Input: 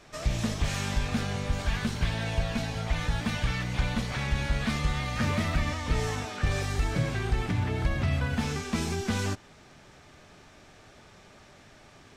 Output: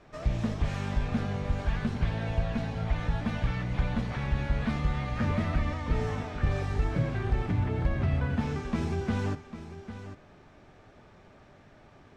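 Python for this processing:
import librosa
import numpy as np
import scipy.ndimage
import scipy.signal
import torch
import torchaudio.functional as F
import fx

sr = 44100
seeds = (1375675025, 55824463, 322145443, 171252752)

y = fx.lowpass(x, sr, hz=1200.0, slope=6)
y = y + 10.0 ** (-12.0 / 20.0) * np.pad(y, (int(799 * sr / 1000.0), 0))[:len(y)]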